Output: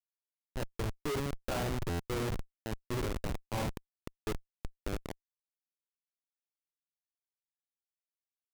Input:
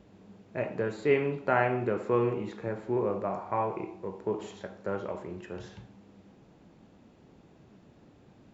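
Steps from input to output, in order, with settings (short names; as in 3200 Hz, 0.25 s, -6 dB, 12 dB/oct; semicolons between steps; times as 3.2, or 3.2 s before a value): Schmitt trigger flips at -26.5 dBFS; stuck buffer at 1.89, samples 512, times 8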